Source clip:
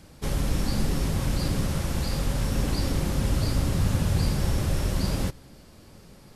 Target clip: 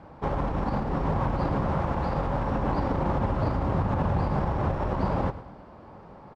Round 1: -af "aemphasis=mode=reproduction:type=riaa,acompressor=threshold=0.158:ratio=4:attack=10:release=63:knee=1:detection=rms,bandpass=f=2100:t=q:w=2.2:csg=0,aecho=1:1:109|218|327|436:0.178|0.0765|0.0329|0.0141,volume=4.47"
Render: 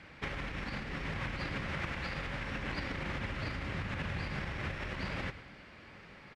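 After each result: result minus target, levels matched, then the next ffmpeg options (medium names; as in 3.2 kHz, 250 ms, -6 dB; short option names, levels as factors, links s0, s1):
2 kHz band +13.5 dB; compression: peak gain reduction +5.5 dB
-af "aemphasis=mode=reproduction:type=riaa,acompressor=threshold=0.158:ratio=4:attack=10:release=63:knee=1:detection=rms,bandpass=f=910:t=q:w=2.2:csg=0,aecho=1:1:109|218|327|436:0.178|0.0765|0.0329|0.0141,volume=4.47"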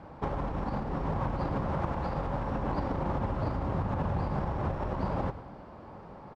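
compression: peak gain reduction +5.5 dB
-af "aemphasis=mode=reproduction:type=riaa,acompressor=threshold=0.355:ratio=4:attack=10:release=63:knee=1:detection=rms,bandpass=f=910:t=q:w=2.2:csg=0,aecho=1:1:109|218|327|436:0.178|0.0765|0.0329|0.0141,volume=4.47"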